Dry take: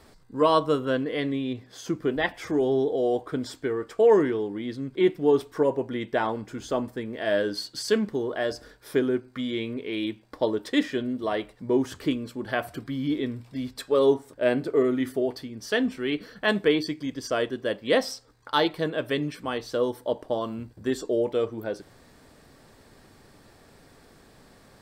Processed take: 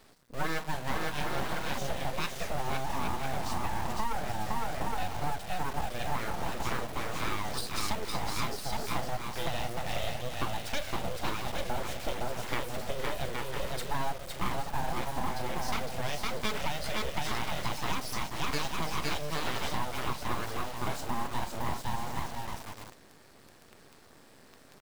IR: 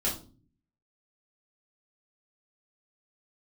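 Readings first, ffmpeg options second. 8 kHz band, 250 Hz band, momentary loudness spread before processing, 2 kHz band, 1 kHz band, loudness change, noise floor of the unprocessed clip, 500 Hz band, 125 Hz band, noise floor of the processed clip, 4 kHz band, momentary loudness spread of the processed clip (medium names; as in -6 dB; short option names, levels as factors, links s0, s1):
+3.5 dB, -13.0 dB, 11 LU, -4.0 dB, -0.5 dB, -8.0 dB, -55 dBFS, -14.5 dB, 0.0 dB, -56 dBFS, -3.0 dB, 3 LU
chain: -filter_complex "[0:a]highpass=65,aecho=1:1:510|816|999.6|1110|1176:0.631|0.398|0.251|0.158|0.1,acompressor=threshold=0.0562:ratio=12,lowshelf=f=280:g=-3,asplit=2[s0][s1];[s1]adelay=37,volume=0.2[s2];[s0][s2]amix=inputs=2:normalize=0,acrusher=bits=8:dc=4:mix=0:aa=0.000001,aeval=exprs='abs(val(0))':c=same"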